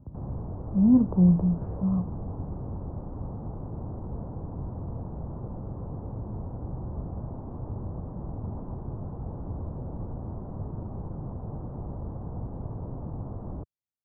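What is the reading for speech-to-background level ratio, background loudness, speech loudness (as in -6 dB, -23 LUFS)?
14.0 dB, -37.5 LUFS, -23.5 LUFS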